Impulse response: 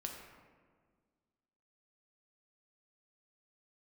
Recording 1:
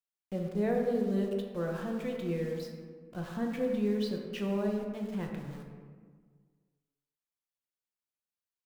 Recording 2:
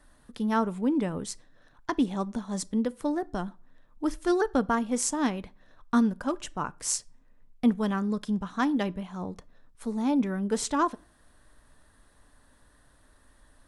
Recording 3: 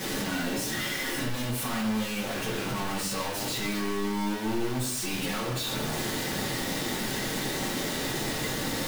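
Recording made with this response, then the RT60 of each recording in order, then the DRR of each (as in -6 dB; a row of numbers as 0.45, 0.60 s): 1; 1.7, 0.40, 0.65 s; 1.0, 15.0, -7.5 dB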